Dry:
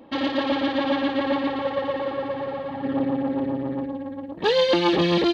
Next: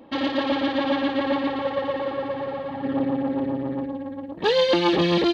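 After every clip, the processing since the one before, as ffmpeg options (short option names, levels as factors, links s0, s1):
-af anull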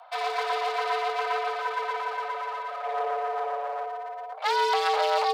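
-af "aeval=exprs='clip(val(0),-1,0.0224)':c=same,afreqshift=440,volume=0.841"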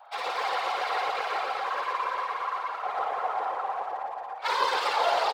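-af "aecho=1:1:55.39|221.6:0.794|0.447,afreqshift=64,afftfilt=real='hypot(re,im)*cos(2*PI*random(0))':imag='hypot(re,im)*sin(2*PI*random(1))':win_size=512:overlap=0.75,volume=1.41"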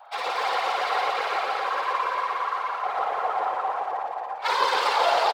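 -af "aecho=1:1:174.9|285.7:0.316|0.282,volume=1.41"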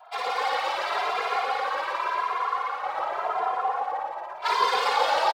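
-filter_complex "[0:a]asplit=2[s0][s1];[s1]adelay=2.5,afreqshift=0.88[s2];[s0][s2]amix=inputs=2:normalize=1,volume=1.26"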